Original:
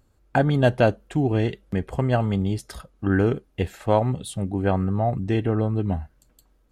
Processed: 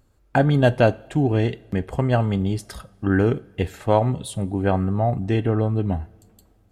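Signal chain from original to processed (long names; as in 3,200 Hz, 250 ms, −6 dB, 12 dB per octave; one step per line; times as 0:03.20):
coupled-rooms reverb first 0.45 s, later 2.9 s, from −18 dB, DRR 17.5 dB
level +1.5 dB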